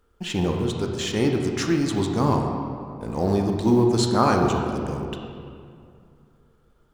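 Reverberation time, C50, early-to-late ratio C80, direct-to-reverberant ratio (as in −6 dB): 2.4 s, 3.5 dB, 4.5 dB, 2.0 dB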